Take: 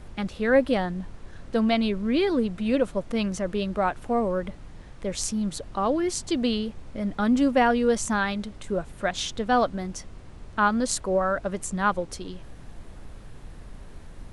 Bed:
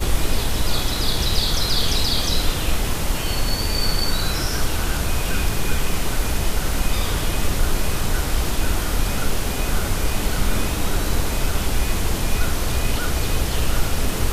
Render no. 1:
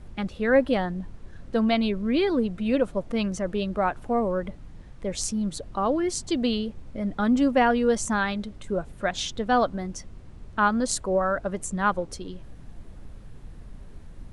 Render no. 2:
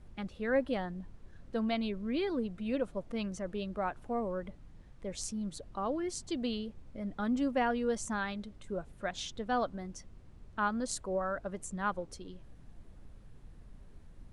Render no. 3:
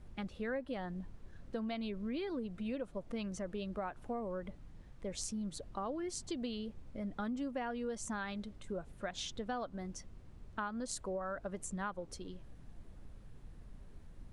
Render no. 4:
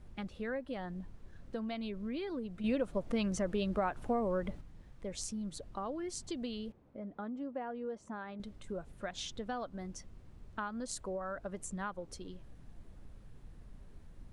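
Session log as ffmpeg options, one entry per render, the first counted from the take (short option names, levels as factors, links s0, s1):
-af "afftdn=nr=6:nf=-44"
-af "volume=0.316"
-af "acompressor=threshold=0.0158:ratio=6"
-filter_complex "[0:a]asettb=1/sr,asplit=3[s0][s1][s2];[s0]atrim=end=6.724[s3];[s1]atrim=start=6.72:end=8.4,asetpts=PTS-STARTPTS,afade=t=in:d=0.004:c=qsin,afade=t=out:st=1.676:d=0.004:c=qsin,bandpass=f=510:t=q:w=0.6[s4];[s2]atrim=start=8.396[s5];[s3][s4]acrossfade=d=0.004:c1=hsin:c2=qsin[s6];[s6][s5]acrossfade=d=0.004:c1=qsin:c2=hsin,asplit=3[s7][s8][s9];[s7]atrim=end=2.642[s10];[s8]atrim=start=2.638:end=4.612,asetpts=PTS-STARTPTS,volume=2.24[s11];[s9]atrim=start=4.608[s12];[s10][s11]acrossfade=d=0.004:c1=hsin:c2=hsin[s13];[s13][s12]acrossfade=d=0.004:c1=hsin:c2=hsin"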